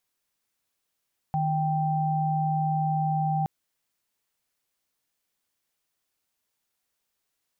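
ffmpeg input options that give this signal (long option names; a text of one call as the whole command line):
ffmpeg -f lavfi -i "aevalsrc='0.0531*(sin(2*PI*155.56*t)+sin(2*PI*783.99*t))':duration=2.12:sample_rate=44100" out.wav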